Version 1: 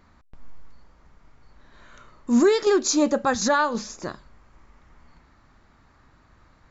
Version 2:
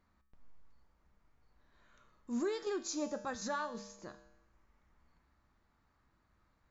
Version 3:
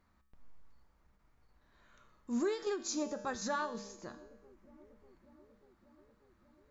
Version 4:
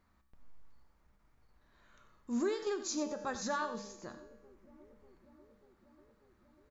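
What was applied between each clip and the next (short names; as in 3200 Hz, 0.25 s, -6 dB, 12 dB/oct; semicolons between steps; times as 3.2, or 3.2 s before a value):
resonator 67 Hz, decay 0.96 s, harmonics odd, mix 70%; gain -8 dB
dark delay 0.592 s, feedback 72%, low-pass 510 Hz, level -20.5 dB; ending taper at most 180 dB/s; gain +2 dB
echo 93 ms -13 dB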